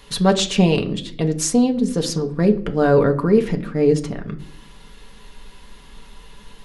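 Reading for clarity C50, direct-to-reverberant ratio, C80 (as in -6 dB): 15.0 dB, 3.0 dB, 18.5 dB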